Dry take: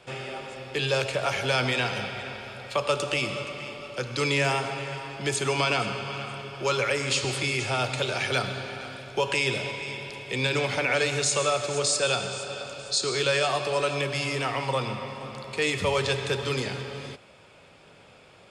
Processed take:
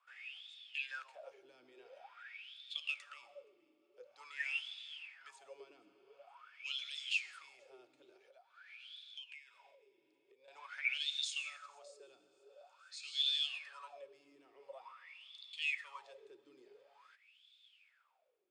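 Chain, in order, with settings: wah-wah 0.47 Hz 310–3600 Hz, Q 16; 8.16–10.48 s: compression 12:1, threshold -50 dBFS, peak gain reduction 18 dB; differentiator; trim +9 dB

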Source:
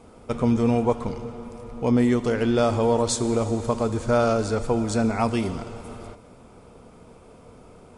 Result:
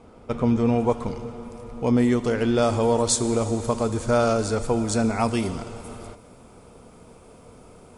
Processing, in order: treble shelf 7.5 kHz -11.5 dB, from 0.80 s +2.5 dB, from 2.62 s +9.5 dB

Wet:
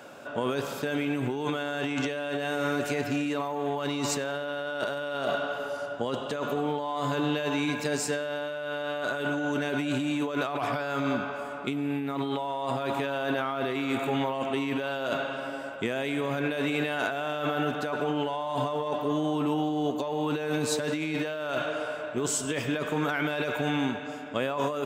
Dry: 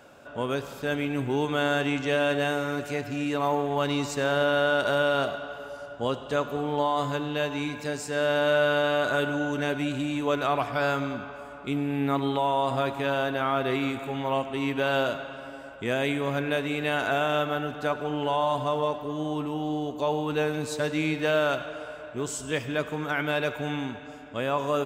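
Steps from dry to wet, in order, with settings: in parallel at -11 dB: saturation -24.5 dBFS, distortion -12 dB; on the sum: compressor with a negative ratio -29 dBFS, ratio -1; high-pass 140 Hz 12 dB/octave

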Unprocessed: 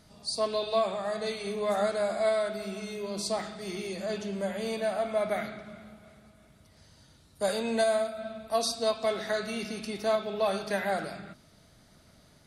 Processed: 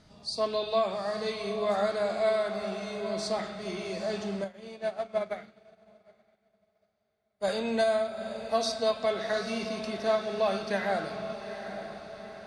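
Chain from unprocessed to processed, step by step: low-pass 6 kHz 12 dB/octave; echo that smears into a reverb 841 ms, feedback 52%, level -10 dB; 4.44–7.47 s: upward expansion 2.5:1, over -45 dBFS

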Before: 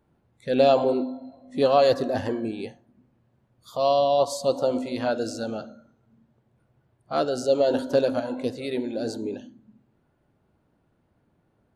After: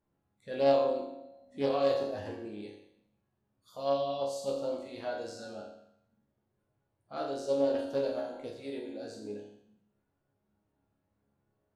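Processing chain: chord resonator C#2 sus4, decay 0.75 s; loudspeaker Doppler distortion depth 0.15 ms; trim +5 dB

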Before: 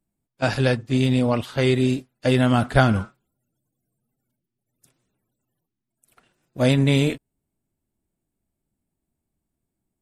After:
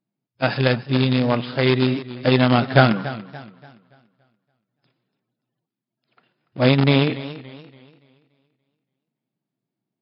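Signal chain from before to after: in parallel at -11 dB: companded quantiser 2-bit; on the sum: FFT band-pass 110–5200 Hz; modulated delay 286 ms, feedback 37%, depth 79 cents, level -15.5 dB; trim -1 dB

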